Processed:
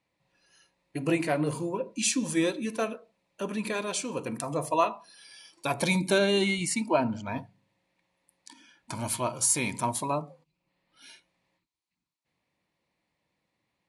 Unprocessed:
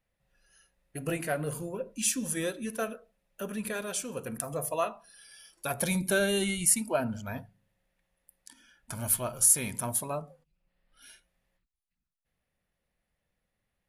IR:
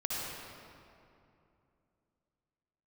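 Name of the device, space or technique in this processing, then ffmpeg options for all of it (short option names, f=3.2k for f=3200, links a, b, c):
car door speaker: -filter_complex "[0:a]highpass=110,equalizer=f=140:t=q:w=4:g=3,equalizer=f=310:t=q:w=4:g=10,equalizer=f=970:t=q:w=4:g=10,equalizer=f=1.5k:t=q:w=4:g=-5,equalizer=f=2.3k:t=q:w=4:g=6,equalizer=f=4.2k:t=q:w=4:g=7,lowpass=f=8.8k:w=0.5412,lowpass=f=8.8k:w=1.3066,asettb=1/sr,asplit=3[a][b][c];[a]atrim=end=6.184[d];[b]atrim=start=6.18:end=7.36,asetpts=PTS-STARTPTS,afade=t=in:d=0.004:c=qsin,afade=t=out:st=1.176:d=0.004:c=qsin,highshelf=f=8.8k:g=-12[e];[c]atrim=start=7.356[f];[d][e]acrossfade=d=0.004:c1=hsin:c2=qsin[g];[g][f]acrossfade=d=0.004:c1=qsin:c2=hsin,volume=2dB"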